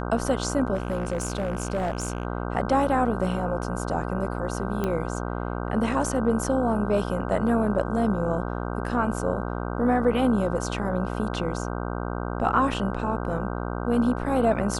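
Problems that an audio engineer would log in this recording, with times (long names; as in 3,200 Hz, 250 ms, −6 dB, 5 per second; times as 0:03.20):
mains buzz 60 Hz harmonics 26 −30 dBFS
0:00.74–0:02.25: clipping −21.5 dBFS
0:04.84: click −14 dBFS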